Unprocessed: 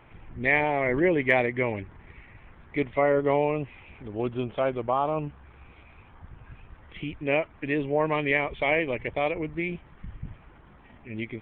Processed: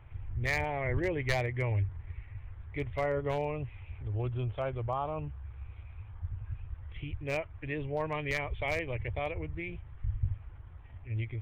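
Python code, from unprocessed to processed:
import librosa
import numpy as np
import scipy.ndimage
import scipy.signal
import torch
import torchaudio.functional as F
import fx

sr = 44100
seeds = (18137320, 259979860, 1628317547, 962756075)

y = np.minimum(x, 2.0 * 10.0 ** (-14.0 / 20.0) - x)
y = fx.low_shelf_res(y, sr, hz=140.0, db=12.5, q=3.0)
y = F.gain(torch.from_numpy(y), -8.0).numpy()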